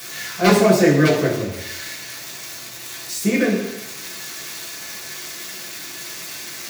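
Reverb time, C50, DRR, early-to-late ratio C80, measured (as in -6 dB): 0.80 s, 5.0 dB, -6.0 dB, 8.0 dB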